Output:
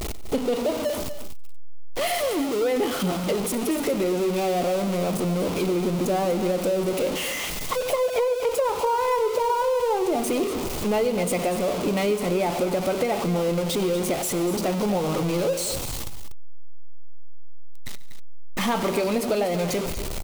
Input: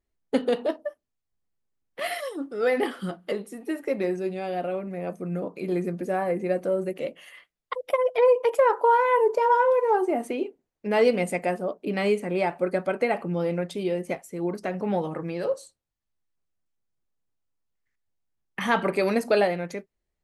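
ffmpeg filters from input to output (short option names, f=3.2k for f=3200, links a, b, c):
-af "aeval=exprs='val(0)+0.5*0.0668*sgn(val(0))':c=same,equalizer=f=1.7k:t=o:w=0.48:g=-9,acompressor=threshold=-22dB:ratio=6,aecho=1:1:95|142|242:0.1|0.106|0.266,volume=1.5dB"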